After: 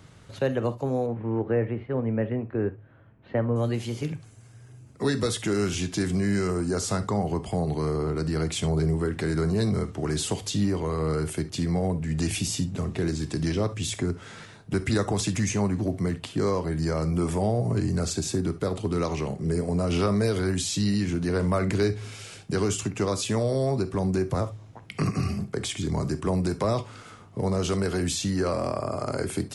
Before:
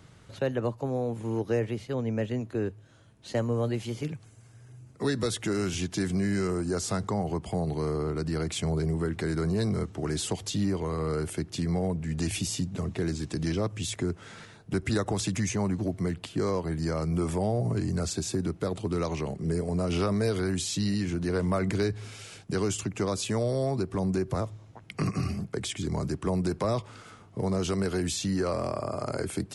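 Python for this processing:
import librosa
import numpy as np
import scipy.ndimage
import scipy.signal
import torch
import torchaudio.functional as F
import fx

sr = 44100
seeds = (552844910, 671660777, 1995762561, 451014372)

y = fx.lowpass(x, sr, hz=2200.0, slope=24, at=(1.06, 3.56))
y = fx.rev_gated(y, sr, seeds[0], gate_ms=90, shape='flat', drr_db=11.0)
y = y * 10.0 ** (2.5 / 20.0)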